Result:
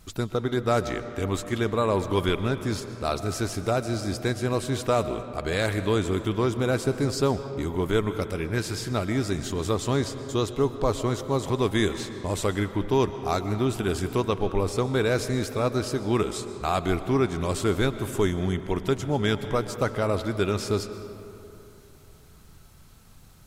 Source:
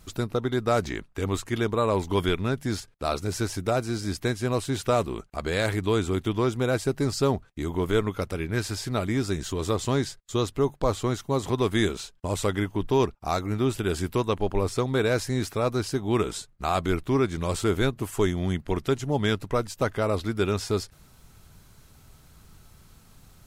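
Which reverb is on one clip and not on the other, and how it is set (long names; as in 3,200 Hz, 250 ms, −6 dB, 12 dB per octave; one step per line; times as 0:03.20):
comb and all-pass reverb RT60 3.1 s, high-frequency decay 0.5×, pre-delay 85 ms, DRR 10.5 dB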